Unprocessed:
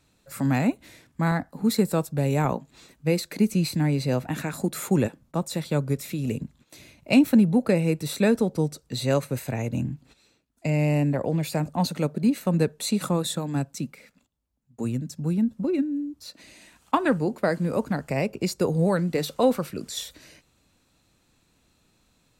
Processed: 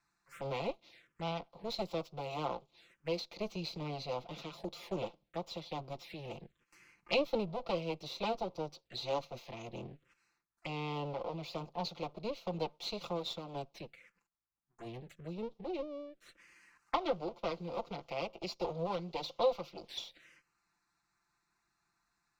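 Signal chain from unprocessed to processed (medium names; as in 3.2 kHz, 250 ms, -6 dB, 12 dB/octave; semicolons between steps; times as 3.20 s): comb filter that takes the minimum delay 5.8 ms; three-band isolator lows -15 dB, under 480 Hz, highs -20 dB, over 6 kHz; touch-sensitive phaser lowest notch 530 Hz, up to 1.7 kHz, full sweep at -35 dBFS; trim -4.5 dB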